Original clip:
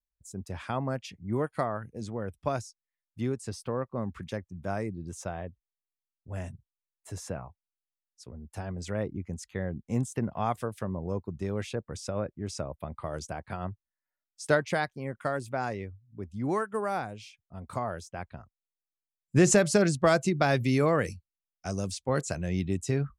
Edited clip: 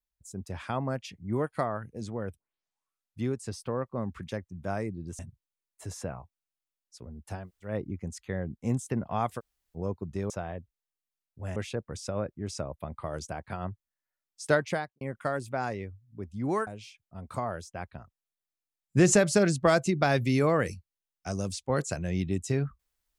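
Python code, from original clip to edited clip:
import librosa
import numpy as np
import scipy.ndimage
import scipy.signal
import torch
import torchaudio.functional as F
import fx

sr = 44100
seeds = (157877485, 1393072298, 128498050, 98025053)

y = fx.studio_fade_out(x, sr, start_s=14.67, length_s=0.34)
y = fx.edit(y, sr, fx.tape_start(start_s=2.37, length_s=0.85),
    fx.move(start_s=5.19, length_s=1.26, to_s=11.56),
    fx.room_tone_fill(start_s=8.69, length_s=0.25, crossfade_s=0.16),
    fx.room_tone_fill(start_s=10.65, length_s=0.37, crossfade_s=0.04),
    fx.cut(start_s=16.67, length_s=0.39), tone=tone)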